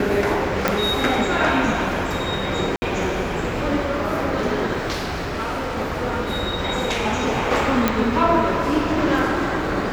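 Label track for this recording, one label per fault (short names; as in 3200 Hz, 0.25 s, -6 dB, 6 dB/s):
0.680000	0.680000	pop
2.760000	2.820000	gap 60 ms
4.920000	5.780000	clipped -22 dBFS
7.880000	7.880000	pop -3 dBFS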